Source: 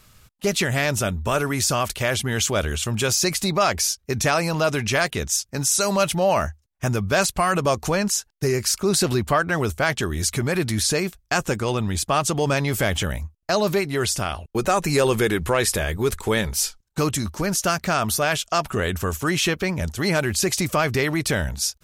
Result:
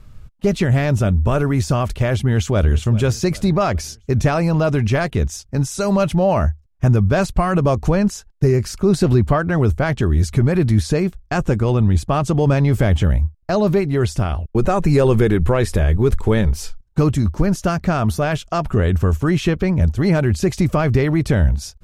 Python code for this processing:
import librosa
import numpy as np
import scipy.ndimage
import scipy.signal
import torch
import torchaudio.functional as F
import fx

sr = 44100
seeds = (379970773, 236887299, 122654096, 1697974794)

y = fx.echo_throw(x, sr, start_s=2.17, length_s=0.58, ms=400, feedback_pct=50, wet_db=-18.0)
y = fx.tilt_eq(y, sr, slope=-3.5)